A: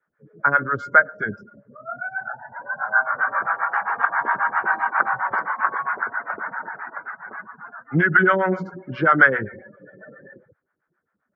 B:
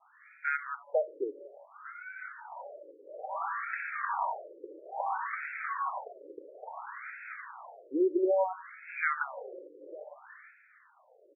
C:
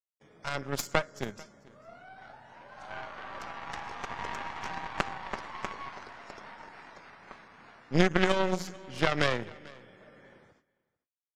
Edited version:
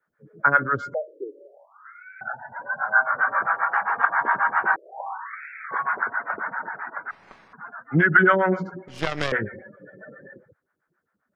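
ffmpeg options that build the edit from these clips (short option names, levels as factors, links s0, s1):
-filter_complex "[1:a]asplit=2[s0][s1];[2:a]asplit=2[s2][s3];[0:a]asplit=5[s4][s5][s6][s7][s8];[s4]atrim=end=0.942[s9];[s0]atrim=start=0.938:end=2.212[s10];[s5]atrim=start=2.208:end=4.762[s11];[s1]atrim=start=4.758:end=5.712[s12];[s6]atrim=start=5.708:end=7.112[s13];[s2]atrim=start=7.108:end=7.532[s14];[s7]atrim=start=7.528:end=8.882[s15];[s3]atrim=start=8.878:end=9.322[s16];[s8]atrim=start=9.318[s17];[s9][s10]acrossfade=d=0.004:c1=hsin:c2=hsin[s18];[s18][s11]acrossfade=d=0.004:c1=hsin:c2=hsin[s19];[s19][s12]acrossfade=d=0.004:c1=hsin:c2=hsin[s20];[s20][s13]acrossfade=d=0.004:c1=hsin:c2=hsin[s21];[s21][s14]acrossfade=d=0.004:c1=hsin:c2=hsin[s22];[s22][s15]acrossfade=d=0.004:c1=hsin:c2=hsin[s23];[s23][s16]acrossfade=d=0.004:c1=hsin:c2=hsin[s24];[s24][s17]acrossfade=d=0.004:c1=hsin:c2=hsin"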